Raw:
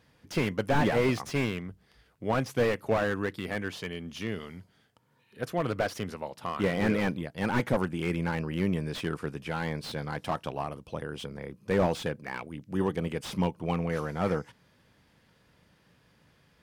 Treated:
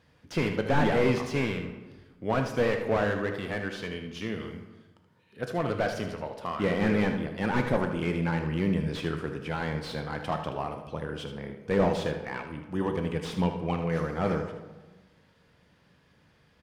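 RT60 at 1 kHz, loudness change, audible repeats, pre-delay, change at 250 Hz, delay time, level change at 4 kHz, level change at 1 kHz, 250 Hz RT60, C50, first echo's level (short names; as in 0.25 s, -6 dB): 1.2 s, +1.0 dB, 1, 11 ms, +1.5 dB, 77 ms, 0.0 dB, +1.0 dB, 1.4 s, 6.5 dB, -10.0 dB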